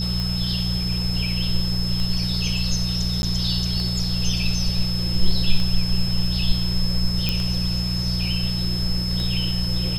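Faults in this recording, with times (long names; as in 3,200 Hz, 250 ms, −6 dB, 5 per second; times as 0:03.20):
mains hum 60 Hz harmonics 3 −25 dBFS
scratch tick 33 1/3 rpm
whistle 5,200 Hz −27 dBFS
0:03.22–0:03.23: drop-out 11 ms
0:07.29: click −8 dBFS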